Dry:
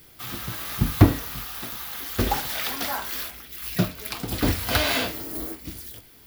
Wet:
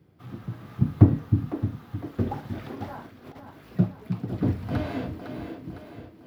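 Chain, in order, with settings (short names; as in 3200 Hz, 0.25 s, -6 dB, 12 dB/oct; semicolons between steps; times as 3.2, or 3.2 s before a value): HPF 110 Hz 24 dB/oct; high shelf 2400 Hz -7.5 dB; split-band echo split 310 Hz, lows 0.308 s, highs 0.507 s, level -7.5 dB; 3.06–3.5 negative-ratio compressor -38 dBFS, ratio -0.5; tilt -4.5 dB/oct; gain -9.5 dB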